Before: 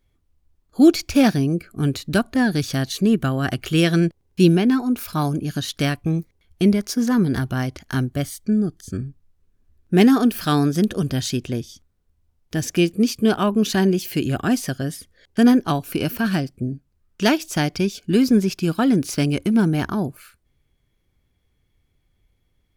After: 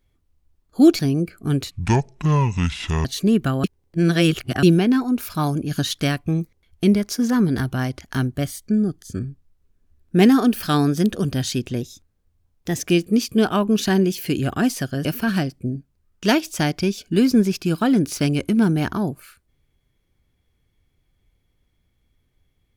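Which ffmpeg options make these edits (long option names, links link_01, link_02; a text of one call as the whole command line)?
ffmpeg -i in.wav -filter_complex "[0:a]asplit=11[link_01][link_02][link_03][link_04][link_05][link_06][link_07][link_08][link_09][link_10][link_11];[link_01]atrim=end=0.992[link_12];[link_02]atrim=start=1.318:end=2.044[link_13];[link_03]atrim=start=2.04:end=2.83,asetpts=PTS-STARTPTS,asetrate=26019,aresample=44100,atrim=end_sample=59049,asetpts=PTS-STARTPTS[link_14];[link_04]atrim=start=2.826:end=3.422[link_15];[link_05]atrim=start=3.418:end=4.412,asetpts=PTS-STARTPTS,areverse[link_16];[link_06]atrim=start=4.408:end=5.492[link_17];[link_07]atrim=start=5.488:end=5.762,asetpts=PTS-STARTPTS,volume=3dB[link_18];[link_08]atrim=start=5.758:end=11.594[link_19];[link_09]atrim=start=11.59:end=12.67,asetpts=PTS-STARTPTS,asetrate=48069,aresample=44100,atrim=end_sample=43695,asetpts=PTS-STARTPTS[link_20];[link_10]atrim=start=12.666:end=14.922[link_21];[link_11]atrim=start=16.018[link_22];[link_12][link_13]acrossfade=duration=0.004:curve1=hsin:curve2=hsin[link_23];[link_23][link_14]acrossfade=duration=0.004:curve1=hsin:curve2=hsin[link_24];[link_24][link_15]acrossfade=duration=0.004:curve1=hsin:curve2=hsin[link_25];[link_25][link_16]acrossfade=duration=0.004:curve1=hsin:curve2=hsin[link_26];[link_26][link_17]acrossfade=duration=0.004:curve1=hsin:curve2=hsin[link_27];[link_27][link_18]acrossfade=duration=0.004:curve1=hsin:curve2=hsin[link_28];[link_28][link_19]acrossfade=duration=0.004:curve1=hsin:curve2=hsin[link_29];[link_29][link_20]acrossfade=duration=0.004:curve1=hsin:curve2=hsin[link_30];[link_30][link_21]acrossfade=duration=0.004:curve1=hsin:curve2=hsin[link_31];[link_31][link_22]acrossfade=duration=0.004:curve1=hsin:curve2=hsin" out.wav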